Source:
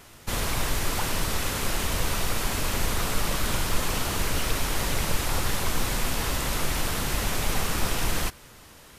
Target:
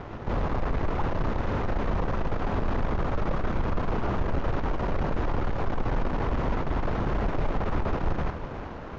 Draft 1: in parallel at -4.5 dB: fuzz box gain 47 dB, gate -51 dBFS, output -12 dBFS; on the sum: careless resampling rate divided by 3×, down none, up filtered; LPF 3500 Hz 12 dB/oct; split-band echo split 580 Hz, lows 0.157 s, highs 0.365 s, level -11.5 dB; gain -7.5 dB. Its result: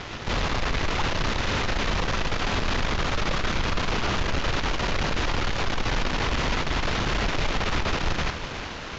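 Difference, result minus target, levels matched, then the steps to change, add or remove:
4000 Hz band +15.5 dB
change: LPF 1000 Hz 12 dB/oct

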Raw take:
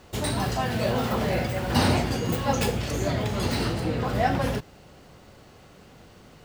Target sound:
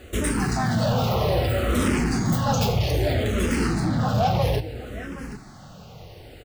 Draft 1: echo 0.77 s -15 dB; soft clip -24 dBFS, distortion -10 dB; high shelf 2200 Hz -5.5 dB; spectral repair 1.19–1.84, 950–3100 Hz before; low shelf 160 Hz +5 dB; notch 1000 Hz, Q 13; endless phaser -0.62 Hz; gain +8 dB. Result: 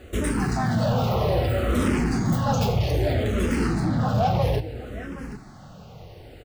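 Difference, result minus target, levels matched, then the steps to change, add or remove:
4000 Hz band -3.5 dB
remove: high shelf 2200 Hz -5.5 dB

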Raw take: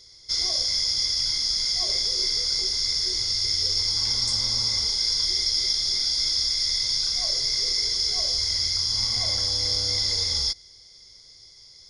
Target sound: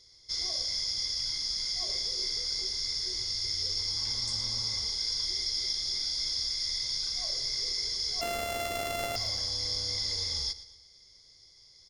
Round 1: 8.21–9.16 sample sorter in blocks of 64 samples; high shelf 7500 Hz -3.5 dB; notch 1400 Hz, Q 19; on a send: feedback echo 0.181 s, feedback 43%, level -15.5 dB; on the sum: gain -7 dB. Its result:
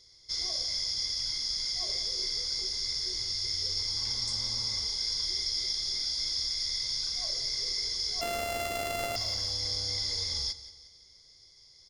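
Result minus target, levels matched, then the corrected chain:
echo 64 ms late
8.21–9.16 sample sorter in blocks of 64 samples; high shelf 7500 Hz -3.5 dB; notch 1400 Hz, Q 19; on a send: feedback echo 0.117 s, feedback 43%, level -15.5 dB; on the sum: gain -7 dB

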